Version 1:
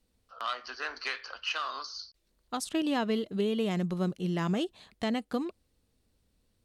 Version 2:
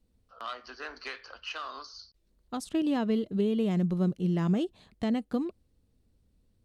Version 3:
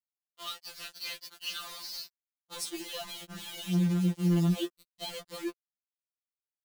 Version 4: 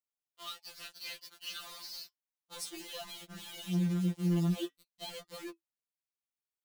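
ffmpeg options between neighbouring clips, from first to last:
ffmpeg -i in.wav -af "lowshelf=frequency=480:gain=11.5,volume=-6dB" out.wav
ffmpeg -i in.wav -af "highshelf=frequency=2500:width_type=q:width=1.5:gain=11.5,acrusher=bits=5:mix=0:aa=0.000001,afftfilt=real='re*2.83*eq(mod(b,8),0)':imag='im*2.83*eq(mod(b,8),0)':win_size=2048:overlap=0.75,volume=-4dB" out.wav
ffmpeg -i in.wav -af "flanger=delay=4.4:depth=2:regen=-76:speed=0.37:shape=sinusoidal" out.wav

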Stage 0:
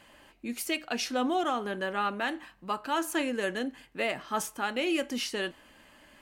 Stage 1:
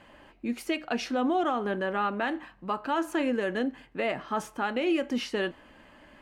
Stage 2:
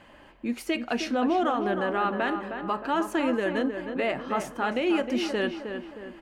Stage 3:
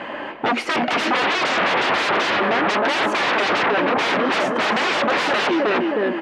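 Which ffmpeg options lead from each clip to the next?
ffmpeg -i in.wav -af "lowpass=frequency=1600:poles=1,alimiter=limit=-23.5dB:level=0:latency=1:release=115,volume=5dB" out.wav
ffmpeg -i in.wav -filter_complex "[0:a]asplit=2[link_01][link_02];[link_02]adelay=312,lowpass=frequency=2100:poles=1,volume=-7dB,asplit=2[link_03][link_04];[link_04]adelay=312,lowpass=frequency=2100:poles=1,volume=0.49,asplit=2[link_05][link_06];[link_06]adelay=312,lowpass=frequency=2100:poles=1,volume=0.49,asplit=2[link_07][link_08];[link_08]adelay=312,lowpass=frequency=2100:poles=1,volume=0.49,asplit=2[link_09][link_10];[link_10]adelay=312,lowpass=frequency=2100:poles=1,volume=0.49,asplit=2[link_11][link_12];[link_12]adelay=312,lowpass=frequency=2100:poles=1,volume=0.49[link_13];[link_01][link_03][link_05][link_07][link_09][link_11][link_13]amix=inputs=7:normalize=0,volume=1.5dB" out.wav
ffmpeg -i in.wav -af "aeval=exprs='0.2*sin(PI/2*10*val(0)/0.2)':channel_layout=same,highpass=270,lowpass=2700" out.wav

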